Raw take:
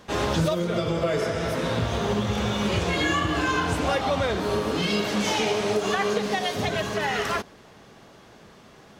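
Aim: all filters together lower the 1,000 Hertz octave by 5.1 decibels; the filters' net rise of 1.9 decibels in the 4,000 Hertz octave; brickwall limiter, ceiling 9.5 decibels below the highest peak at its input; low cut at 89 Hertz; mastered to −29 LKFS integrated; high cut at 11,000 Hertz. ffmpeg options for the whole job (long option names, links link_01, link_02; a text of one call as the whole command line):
ffmpeg -i in.wav -af "highpass=89,lowpass=11000,equalizer=frequency=1000:width_type=o:gain=-7,equalizer=frequency=4000:width_type=o:gain=3,volume=1.5dB,alimiter=limit=-20.5dB:level=0:latency=1" out.wav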